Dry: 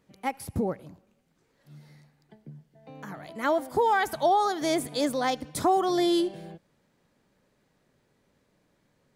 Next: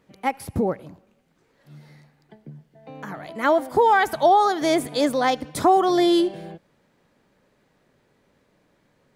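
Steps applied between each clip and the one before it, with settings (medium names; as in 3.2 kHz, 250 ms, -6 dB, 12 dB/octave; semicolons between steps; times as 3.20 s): tone controls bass -3 dB, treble -5 dB; trim +6.5 dB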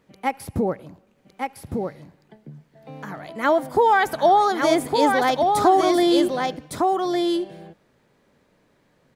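delay 1159 ms -4 dB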